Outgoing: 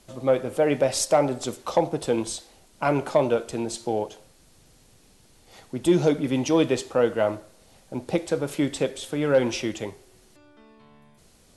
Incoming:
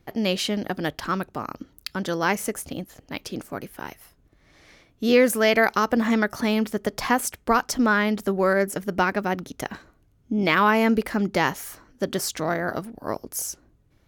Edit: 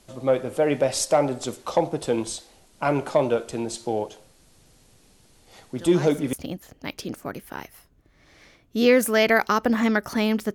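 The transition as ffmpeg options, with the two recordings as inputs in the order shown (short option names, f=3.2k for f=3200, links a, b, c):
-filter_complex "[1:a]asplit=2[a][b];[0:a]apad=whole_dur=10.54,atrim=end=10.54,atrim=end=6.332[c];[b]atrim=start=2.598:end=6.81[d];[a]atrim=start=2.04:end=2.6,asetpts=PTS-STARTPTS,volume=-14.5dB,afade=t=in:d=0.004:c=hsin,afade=t=out:st=0.556:d=0.004:c=hsin,adelay=254457S[e];[c][d]acrossfade=d=0.004:c1=hsin:c2=hsin[f];[f][e]amix=inputs=2:normalize=0"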